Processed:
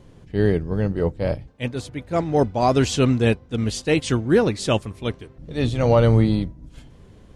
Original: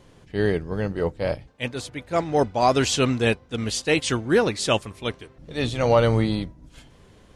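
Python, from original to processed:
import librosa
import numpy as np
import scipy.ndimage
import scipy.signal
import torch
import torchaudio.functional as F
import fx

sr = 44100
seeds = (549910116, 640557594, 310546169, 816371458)

y = fx.low_shelf(x, sr, hz=450.0, db=9.5)
y = y * 10.0 ** (-3.0 / 20.0)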